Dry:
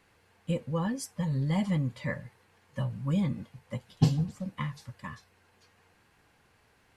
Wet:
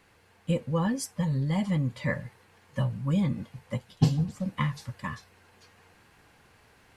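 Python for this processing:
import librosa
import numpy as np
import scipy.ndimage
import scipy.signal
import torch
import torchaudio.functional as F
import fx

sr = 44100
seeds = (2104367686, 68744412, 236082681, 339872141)

y = fx.rider(x, sr, range_db=3, speed_s=0.5)
y = y * librosa.db_to_amplitude(3.0)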